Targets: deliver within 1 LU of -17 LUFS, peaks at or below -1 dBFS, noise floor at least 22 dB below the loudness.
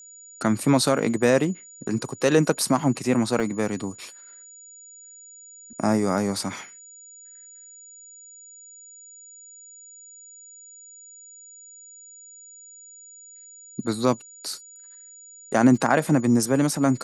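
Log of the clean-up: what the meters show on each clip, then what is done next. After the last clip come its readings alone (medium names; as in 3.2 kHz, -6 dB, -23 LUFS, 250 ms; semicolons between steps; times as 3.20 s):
dropouts 2; longest dropout 2.5 ms; steady tone 6.9 kHz; tone level -44 dBFS; loudness -23.0 LUFS; peak level -5.5 dBFS; loudness target -17.0 LUFS
-> interpolate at 3.40/15.76 s, 2.5 ms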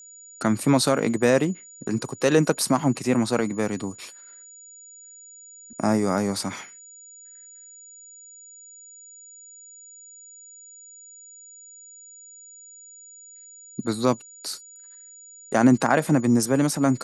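dropouts 0; steady tone 6.9 kHz; tone level -44 dBFS
-> band-stop 6.9 kHz, Q 30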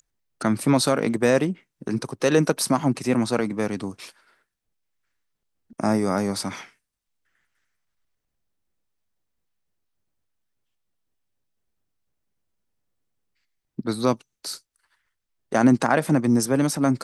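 steady tone not found; loudness -22.5 LUFS; peak level -5.5 dBFS; loudness target -17.0 LUFS
-> trim +5.5 dB; peak limiter -1 dBFS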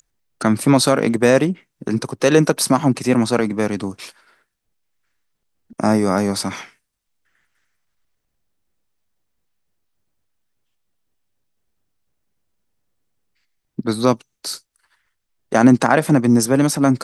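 loudness -17.5 LUFS; peak level -1.0 dBFS; noise floor -75 dBFS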